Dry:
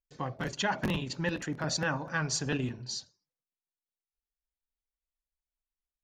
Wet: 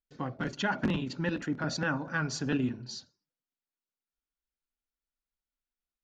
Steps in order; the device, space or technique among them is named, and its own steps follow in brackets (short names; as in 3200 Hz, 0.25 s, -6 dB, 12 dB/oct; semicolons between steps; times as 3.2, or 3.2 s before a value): inside a cardboard box (LPF 5500 Hz 12 dB/oct; small resonant body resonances 250/1400 Hz, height 8 dB, ringing for 20 ms); gain -2.5 dB